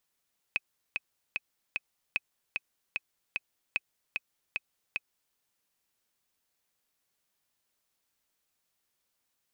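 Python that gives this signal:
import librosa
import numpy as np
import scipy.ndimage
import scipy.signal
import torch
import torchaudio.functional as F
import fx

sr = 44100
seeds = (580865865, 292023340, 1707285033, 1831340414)

y = fx.click_track(sr, bpm=150, beats=4, bars=3, hz=2530.0, accent_db=3.5, level_db=-14.5)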